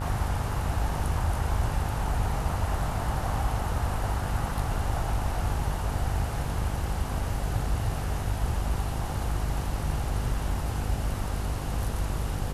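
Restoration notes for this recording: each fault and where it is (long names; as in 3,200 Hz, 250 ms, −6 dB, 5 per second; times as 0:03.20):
mains buzz 50 Hz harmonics 36 −33 dBFS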